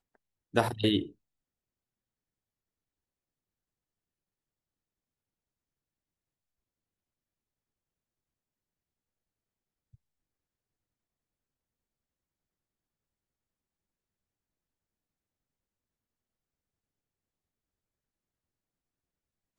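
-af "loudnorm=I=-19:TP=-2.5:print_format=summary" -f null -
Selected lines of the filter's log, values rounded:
Input Integrated:    -29.6 LUFS
Input True Peak:      -8.6 dBTP
Input LRA:            19.1 LU
Input Threshold:     -42.0 LUFS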